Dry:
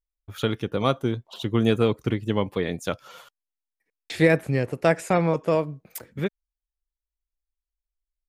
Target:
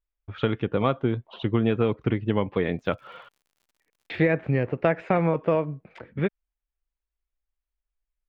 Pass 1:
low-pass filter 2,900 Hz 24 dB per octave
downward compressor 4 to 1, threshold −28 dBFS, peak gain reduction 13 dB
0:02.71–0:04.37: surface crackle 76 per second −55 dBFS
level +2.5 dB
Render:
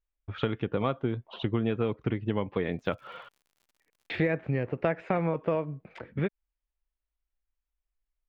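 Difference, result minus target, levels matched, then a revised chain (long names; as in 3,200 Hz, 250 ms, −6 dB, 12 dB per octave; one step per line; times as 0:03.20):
downward compressor: peak gain reduction +5.5 dB
low-pass filter 2,900 Hz 24 dB per octave
downward compressor 4 to 1, threshold −20.5 dBFS, peak gain reduction 7.5 dB
0:02.71–0:04.37: surface crackle 76 per second −55 dBFS
level +2.5 dB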